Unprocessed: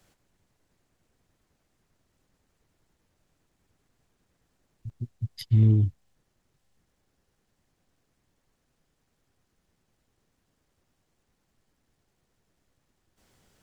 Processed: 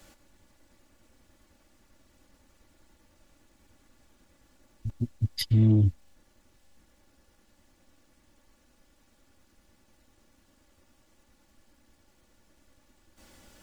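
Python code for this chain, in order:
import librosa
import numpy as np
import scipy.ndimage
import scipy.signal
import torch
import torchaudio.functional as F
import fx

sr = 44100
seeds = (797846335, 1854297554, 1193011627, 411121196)

p1 = x + 0.65 * np.pad(x, (int(3.5 * sr / 1000.0), 0))[:len(x)]
p2 = fx.over_compress(p1, sr, threshold_db=-27.0, ratio=-1.0)
p3 = p1 + F.gain(torch.from_numpy(p2), -1.0).numpy()
y = 10.0 ** (-12.0 / 20.0) * np.tanh(p3 / 10.0 ** (-12.0 / 20.0))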